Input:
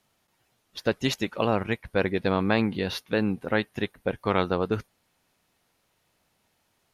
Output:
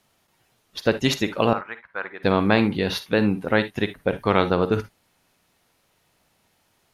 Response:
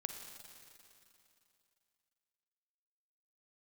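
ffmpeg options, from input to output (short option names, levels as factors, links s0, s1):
-filter_complex "[0:a]asettb=1/sr,asplit=3[s0][s1][s2];[s0]atrim=end=1.534[s3];[s1]atrim=start=1.53:end=2.23,asetpts=PTS-STARTPTS,afade=t=in:d=0.004:c=qsin,afade=t=out:st=0.696:d=0.004:c=qsin,bandpass=f=1300:t=q:w=2.8:csg=0[s4];[s2]atrim=start=2.226[s5];[s3][s4]acrossfade=d=0.004:c1=hsin:c2=qsin[s6];[s6][s5]acrossfade=d=0.004:c1=qsin:c2=hsin[s7];[1:a]atrim=start_sample=2205,atrim=end_sample=3528[s8];[s7][s8]afir=irnorm=-1:irlink=0,volume=2.24"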